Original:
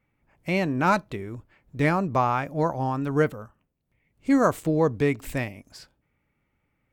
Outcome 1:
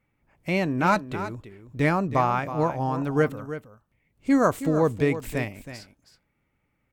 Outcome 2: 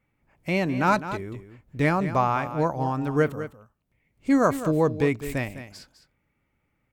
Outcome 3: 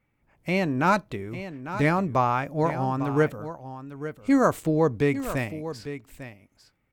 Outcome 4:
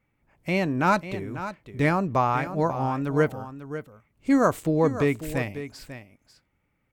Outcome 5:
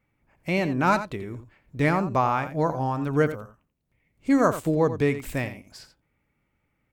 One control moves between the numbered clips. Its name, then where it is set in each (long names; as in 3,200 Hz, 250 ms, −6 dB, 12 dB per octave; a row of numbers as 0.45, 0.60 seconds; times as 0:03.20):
single-tap delay, delay time: 321, 206, 849, 545, 86 milliseconds